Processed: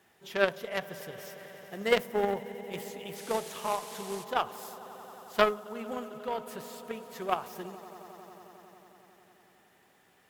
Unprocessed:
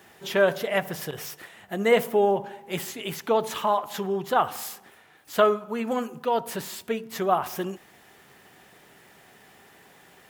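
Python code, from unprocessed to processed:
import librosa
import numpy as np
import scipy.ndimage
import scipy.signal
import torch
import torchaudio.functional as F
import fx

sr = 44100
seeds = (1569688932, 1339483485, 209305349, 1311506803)

y = fx.echo_swell(x, sr, ms=90, loudest=5, wet_db=-17)
y = fx.dmg_noise_band(y, sr, seeds[0], low_hz=1200.0, high_hz=12000.0, level_db=-37.0, at=(3.15, 4.23), fade=0.02)
y = fx.cheby_harmonics(y, sr, harmonics=(3, 6), levels_db=(-12, -44), full_scale_db=-6.5)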